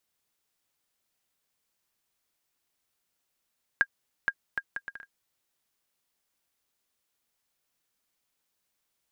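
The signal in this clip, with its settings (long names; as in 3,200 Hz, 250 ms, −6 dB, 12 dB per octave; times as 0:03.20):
bouncing ball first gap 0.47 s, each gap 0.63, 1,620 Hz, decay 56 ms −10.5 dBFS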